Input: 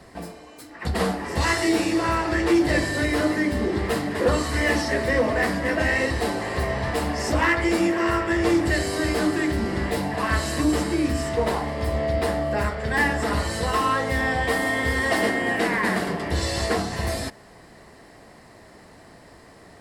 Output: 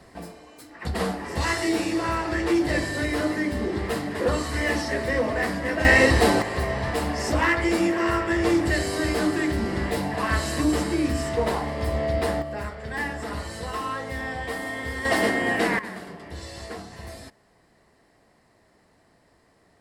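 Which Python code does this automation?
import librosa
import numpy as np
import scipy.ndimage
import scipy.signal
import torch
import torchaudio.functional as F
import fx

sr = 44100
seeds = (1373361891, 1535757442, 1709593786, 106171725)

y = fx.gain(x, sr, db=fx.steps((0.0, -3.0), (5.85, 6.5), (6.42, -1.0), (12.42, -8.0), (15.05, 0.0), (15.79, -13.0)))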